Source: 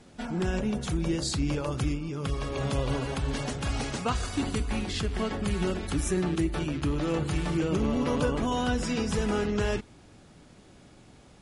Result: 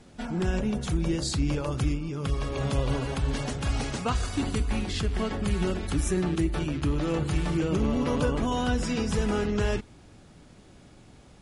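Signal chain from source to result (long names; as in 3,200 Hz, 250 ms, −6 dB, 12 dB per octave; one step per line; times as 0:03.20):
low-shelf EQ 110 Hz +4.5 dB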